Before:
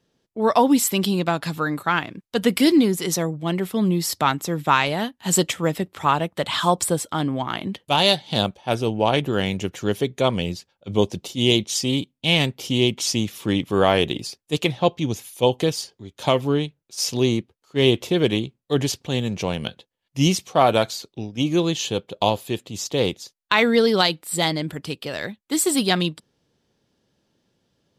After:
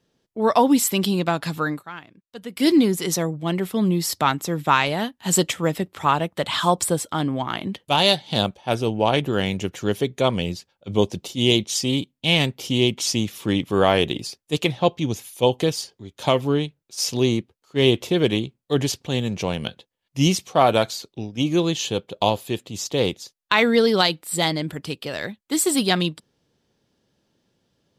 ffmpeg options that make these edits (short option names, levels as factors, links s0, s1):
-filter_complex "[0:a]asplit=3[s0][s1][s2];[s0]atrim=end=1.82,asetpts=PTS-STARTPTS,afade=t=out:st=1.66:d=0.16:c=qsin:silence=0.16788[s3];[s1]atrim=start=1.82:end=2.56,asetpts=PTS-STARTPTS,volume=0.168[s4];[s2]atrim=start=2.56,asetpts=PTS-STARTPTS,afade=t=in:d=0.16:c=qsin:silence=0.16788[s5];[s3][s4][s5]concat=n=3:v=0:a=1"